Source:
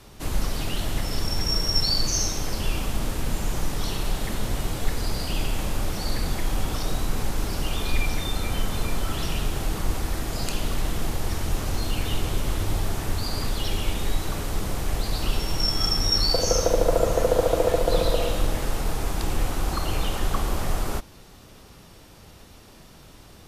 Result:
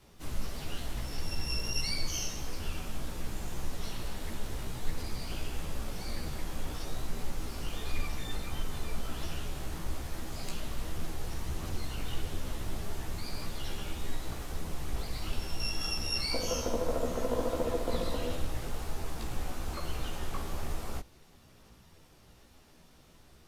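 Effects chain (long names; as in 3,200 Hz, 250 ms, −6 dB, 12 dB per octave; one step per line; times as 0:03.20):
pitch-shifted copies added −12 semitones −7 dB, +12 semitones −14 dB
multi-voice chorus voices 2, 1.5 Hz, delay 15 ms, depth 3 ms
level −8.5 dB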